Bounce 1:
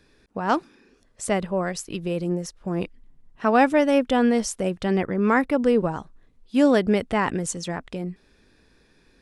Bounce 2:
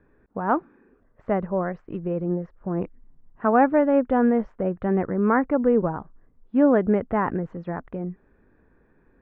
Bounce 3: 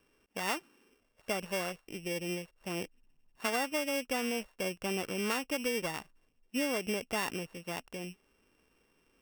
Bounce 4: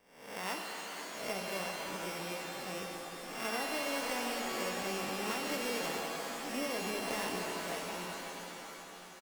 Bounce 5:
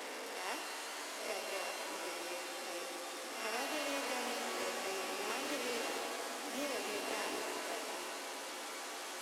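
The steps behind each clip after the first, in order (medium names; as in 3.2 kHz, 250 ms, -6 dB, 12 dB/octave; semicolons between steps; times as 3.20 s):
low-pass 1.6 kHz 24 dB/octave
sorted samples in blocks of 16 samples; bass shelf 310 Hz -11.5 dB; compression 6:1, threshold -24 dBFS, peak gain reduction 9.5 dB; trim -5 dB
reverse spectral sustain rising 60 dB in 0.73 s; on a send: feedback delay 507 ms, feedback 51%, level -12 dB; on the sum: pitch-shifted reverb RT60 3.2 s, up +7 st, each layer -2 dB, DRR 1 dB; trim -7.5 dB
one-bit delta coder 64 kbps, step -35.5 dBFS; steep high-pass 250 Hz 48 dB/octave; loudspeaker Doppler distortion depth 0.24 ms; trim -2.5 dB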